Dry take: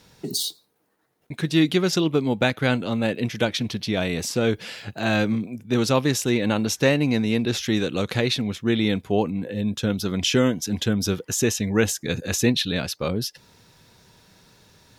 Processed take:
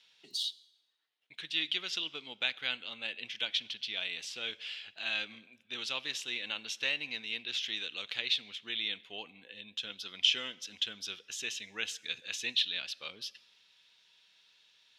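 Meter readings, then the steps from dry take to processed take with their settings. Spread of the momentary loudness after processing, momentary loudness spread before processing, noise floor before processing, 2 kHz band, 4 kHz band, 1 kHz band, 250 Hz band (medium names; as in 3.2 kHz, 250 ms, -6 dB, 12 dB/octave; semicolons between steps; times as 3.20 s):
11 LU, 7 LU, -64 dBFS, -8.0 dB, -3.5 dB, -19.5 dB, -32.0 dB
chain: band-pass filter 3.1 kHz, Q 3.3; plate-style reverb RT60 1.1 s, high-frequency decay 0.85×, DRR 19.5 dB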